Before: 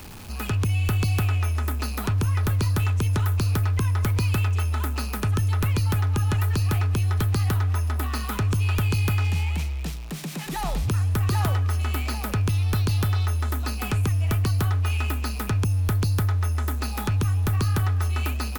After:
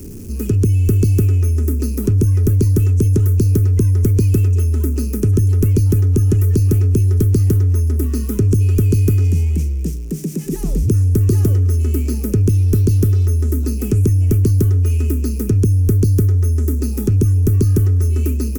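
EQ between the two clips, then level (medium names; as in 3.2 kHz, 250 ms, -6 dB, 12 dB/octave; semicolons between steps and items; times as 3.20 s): FFT filter 150 Hz 0 dB, 250 Hz +4 dB, 410 Hz +5 dB, 760 Hz -25 dB, 1.9 kHz -19 dB, 2.7 kHz -18 dB, 3.9 kHz -22 dB, 5.9 kHz -4 dB; +9.0 dB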